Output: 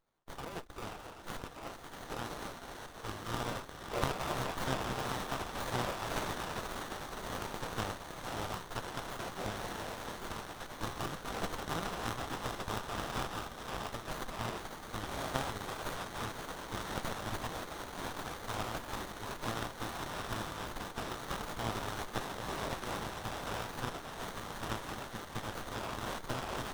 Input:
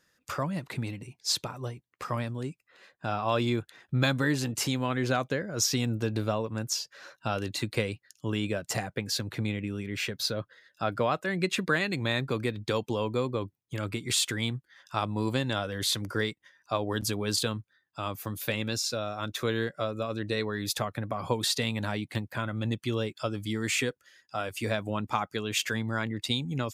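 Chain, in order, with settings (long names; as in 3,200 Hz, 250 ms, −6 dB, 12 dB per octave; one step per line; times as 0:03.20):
feedback delay with all-pass diffusion 581 ms, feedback 73%, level −7 dB
in parallel at −8 dB: decimation without filtering 37×
on the sum: gate on every frequency bin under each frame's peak −20 dB weak
windowed peak hold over 17 samples
level +3 dB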